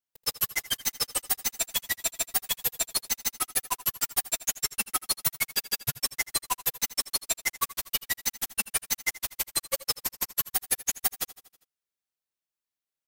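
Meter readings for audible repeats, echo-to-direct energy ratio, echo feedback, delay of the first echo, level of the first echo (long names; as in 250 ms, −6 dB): 4, −16.0 dB, 59%, 80 ms, −18.0 dB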